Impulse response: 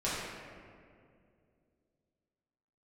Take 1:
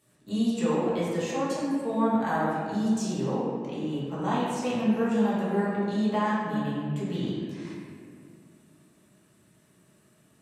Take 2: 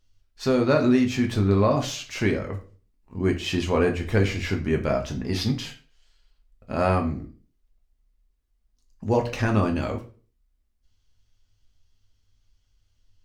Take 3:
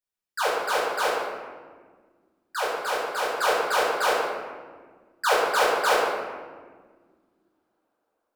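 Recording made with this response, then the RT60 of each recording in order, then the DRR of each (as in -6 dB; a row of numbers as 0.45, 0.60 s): 1; 2.3, 0.40, 1.7 s; -10.0, 2.0, -8.0 dB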